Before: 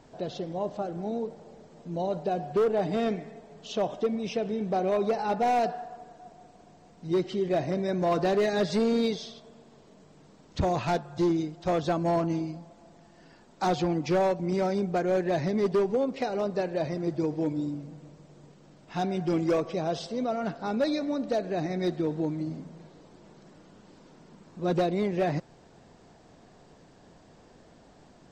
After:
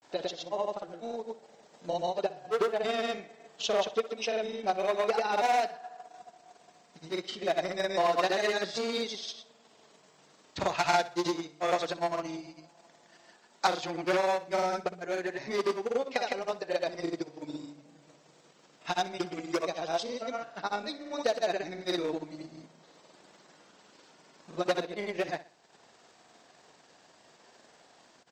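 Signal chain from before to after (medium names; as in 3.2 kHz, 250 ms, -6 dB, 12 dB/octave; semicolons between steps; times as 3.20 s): high-pass 1.5 kHz 6 dB/octave; transient shaper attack +6 dB, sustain -6 dB; granulator 100 ms, grains 20 per s, pitch spread up and down by 0 st; feedback delay 62 ms, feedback 36%, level -16.5 dB; trim +6 dB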